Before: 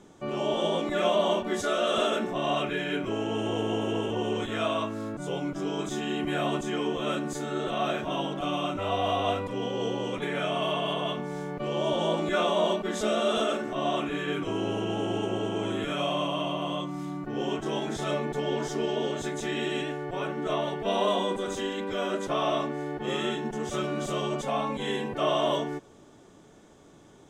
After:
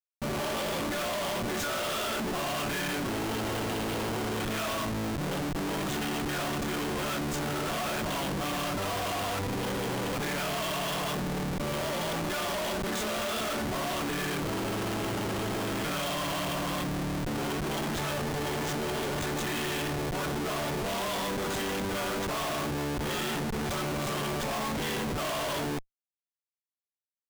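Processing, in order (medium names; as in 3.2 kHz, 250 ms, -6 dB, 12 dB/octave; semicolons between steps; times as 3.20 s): FFT filter 170 Hz 0 dB, 410 Hz -6 dB, 1.4 kHz +2 dB; Schmitt trigger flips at -38 dBFS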